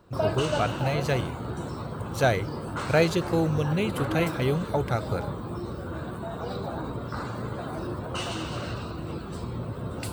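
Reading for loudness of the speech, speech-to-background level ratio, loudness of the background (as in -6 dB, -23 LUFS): -27.5 LUFS, 5.5 dB, -33.0 LUFS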